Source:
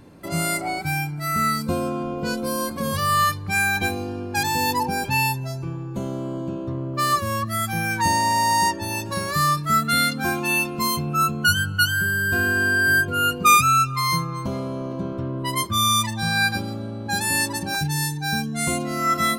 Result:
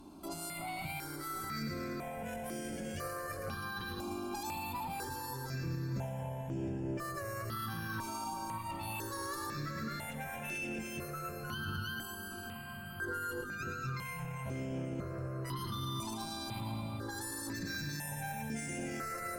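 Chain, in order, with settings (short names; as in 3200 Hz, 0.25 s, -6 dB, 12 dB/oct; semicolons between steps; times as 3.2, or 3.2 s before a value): negative-ratio compressor -25 dBFS, ratio -0.5; notches 50/100/150/200/250 Hz; tube stage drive 19 dB, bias 0.55; on a send: split-band echo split 1500 Hz, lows 0.586 s, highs 0.111 s, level -7.5 dB; on the sum: limiter -26.5 dBFS, peak gain reduction 12.5 dB; diffused feedback echo 0.492 s, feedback 43%, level -9.5 dB; step phaser 2 Hz 500–4100 Hz; gain -2.5 dB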